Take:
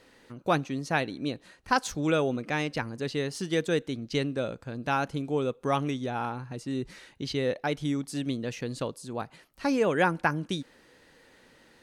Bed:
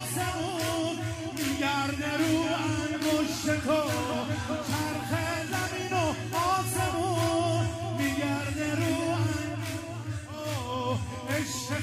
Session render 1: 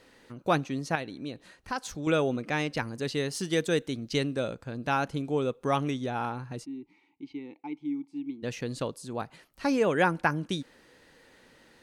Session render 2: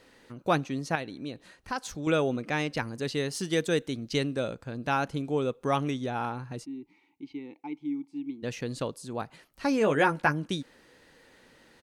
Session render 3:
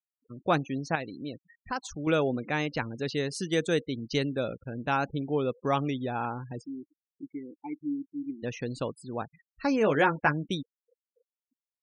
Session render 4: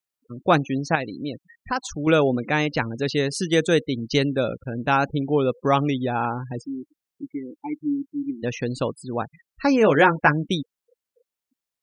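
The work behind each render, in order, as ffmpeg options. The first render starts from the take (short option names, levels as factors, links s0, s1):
-filter_complex "[0:a]asettb=1/sr,asplit=3[s0][s1][s2];[s0]atrim=end=0.954[s3];[s1]atrim=start=0.95:end=2.07,asetpts=PTS-STARTPTS,afade=t=in:d=0.004:c=qsin,afade=t=out:st=1.116:d=0.004:c=qsin,acompressor=threshold=0.00794:ratio=1.5:attack=3.2:release=140:knee=1:detection=peak[s4];[s2]atrim=start=2.066[s5];[s3][s4]acrossfade=d=0.004:c1=hsin:c2=qsin[s6];[s6][s5]acrossfade=d=0.004:c1=qsin:c2=hsin,asettb=1/sr,asplit=3[s7][s8][s9];[s7]atrim=end=2.774[s10];[s8]atrim=start=2.77:end=4.54,asetpts=PTS-STARTPTS,afade=t=in:d=0.004:c=qsin,afade=t=out:st=1.766:d=0.004:c=qsin,highshelf=f=5600:g=6[s11];[s9]atrim=start=4.536[s12];[s10][s11]acrossfade=d=0.004:c1=hsin:c2=qsin[s13];[s13][s12]acrossfade=d=0.004:c1=qsin:c2=hsin,asplit=3[s14][s15][s16];[s14]afade=t=out:st=6.64:d=0.02[s17];[s15]asplit=3[s18][s19][s20];[s18]bandpass=f=300:t=q:w=8,volume=1[s21];[s19]bandpass=f=870:t=q:w=8,volume=0.501[s22];[s20]bandpass=f=2240:t=q:w=8,volume=0.355[s23];[s21][s22][s23]amix=inputs=3:normalize=0,afade=t=in:st=6.64:d=0.02,afade=t=out:st=8.42:d=0.02[s24];[s16]afade=t=in:st=8.42:d=0.02[s25];[s17][s24][s25]amix=inputs=3:normalize=0"
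-filter_complex "[0:a]asplit=3[s0][s1][s2];[s0]afade=t=out:st=9.79:d=0.02[s3];[s1]asplit=2[s4][s5];[s5]adelay=14,volume=0.531[s6];[s4][s6]amix=inputs=2:normalize=0,afade=t=in:st=9.79:d=0.02,afade=t=out:st=10.31:d=0.02[s7];[s2]afade=t=in:st=10.31:d=0.02[s8];[s3][s7][s8]amix=inputs=3:normalize=0"
-af "afftfilt=real='re*gte(hypot(re,im),0.01)':imag='im*gte(hypot(re,im),0.01)':win_size=1024:overlap=0.75,highshelf=f=9100:g=-4"
-af "volume=2.37"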